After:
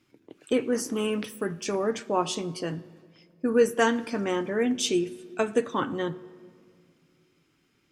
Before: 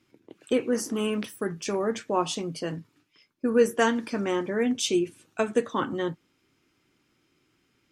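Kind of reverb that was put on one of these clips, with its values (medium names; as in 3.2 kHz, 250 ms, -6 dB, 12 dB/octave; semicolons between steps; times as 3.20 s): simulated room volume 4000 m³, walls mixed, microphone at 0.35 m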